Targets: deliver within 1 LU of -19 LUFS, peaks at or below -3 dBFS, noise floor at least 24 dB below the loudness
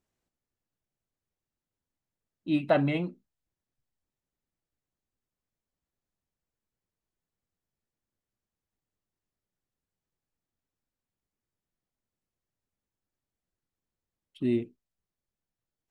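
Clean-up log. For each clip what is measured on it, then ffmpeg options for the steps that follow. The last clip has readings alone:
loudness -29.0 LUFS; peak level -10.5 dBFS; loudness target -19.0 LUFS
-> -af "volume=3.16,alimiter=limit=0.708:level=0:latency=1"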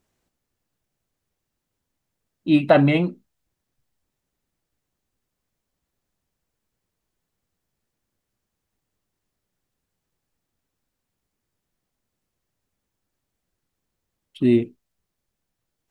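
loudness -19.5 LUFS; peak level -3.0 dBFS; noise floor -81 dBFS

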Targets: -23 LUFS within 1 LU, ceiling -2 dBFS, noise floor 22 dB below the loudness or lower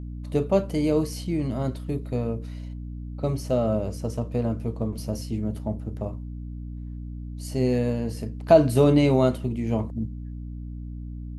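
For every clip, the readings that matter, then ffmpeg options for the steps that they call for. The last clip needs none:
hum 60 Hz; highest harmonic 300 Hz; hum level -32 dBFS; loudness -25.0 LUFS; peak level -4.5 dBFS; loudness target -23.0 LUFS
-> -af "bandreject=f=60:t=h:w=4,bandreject=f=120:t=h:w=4,bandreject=f=180:t=h:w=4,bandreject=f=240:t=h:w=4,bandreject=f=300:t=h:w=4"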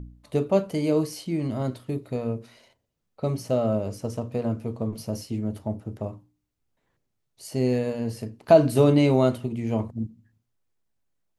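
hum not found; loudness -25.5 LUFS; peak level -5.0 dBFS; loudness target -23.0 LUFS
-> -af "volume=1.33"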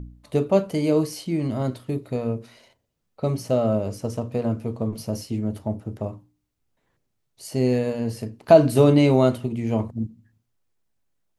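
loudness -23.0 LUFS; peak level -2.5 dBFS; noise floor -75 dBFS

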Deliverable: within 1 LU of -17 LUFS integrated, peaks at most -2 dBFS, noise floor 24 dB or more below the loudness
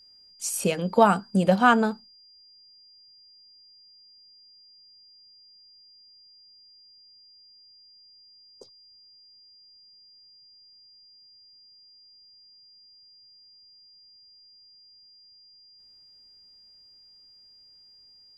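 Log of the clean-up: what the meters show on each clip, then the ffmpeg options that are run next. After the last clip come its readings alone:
steady tone 4.8 kHz; tone level -52 dBFS; loudness -22.5 LUFS; peak level -5.0 dBFS; loudness target -17.0 LUFS
-> -af "bandreject=f=4800:w=30"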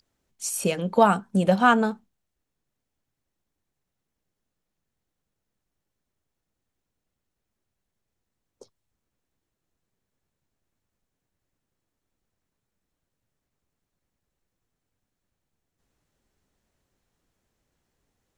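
steady tone not found; loudness -22.0 LUFS; peak level -5.0 dBFS; loudness target -17.0 LUFS
-> -af "volume=1.78,alimiter=limit=0.794:level=0:latency=1"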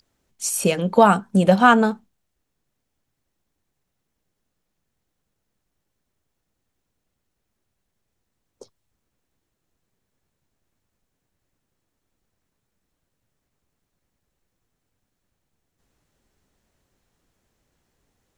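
loudness -17.5 LUFS; peak level -2.0 dBFS; noise floor -78 dBFS

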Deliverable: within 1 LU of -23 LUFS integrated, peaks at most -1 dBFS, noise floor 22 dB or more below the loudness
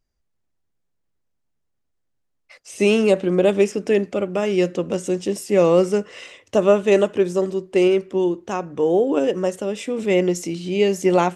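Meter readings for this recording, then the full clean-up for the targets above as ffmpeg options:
loudness -20.0 LUFS; peak level -4.5 dBFS; loudness target -23.0 LUFS
-> -af "volume=0.708"

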